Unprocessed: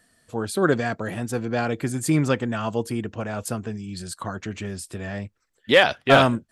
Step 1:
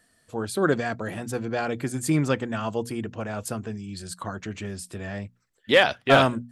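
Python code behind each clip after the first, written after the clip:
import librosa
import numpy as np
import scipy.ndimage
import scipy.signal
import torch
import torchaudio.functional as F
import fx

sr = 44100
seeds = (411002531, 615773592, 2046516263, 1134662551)

y = fx.hum_notches(x, sr, base_hz=60, count=4)
y = y * 10.0 ** (-2.0 / 20.0)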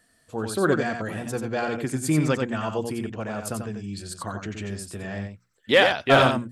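y = x + 10.0 ** (-6.0 / 20.0) * np.pad(x, (int(90 * sr / 1000.0), 0))[:len(x)]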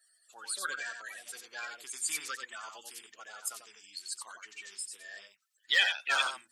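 y = fx.spec_quant(x, sr, step_db=30)
y = scipy.signal.sosfilt(scipy.signal.bessel(2, 2900.0, 'highpass', norm='mag', fs=sr, output='sos'), y)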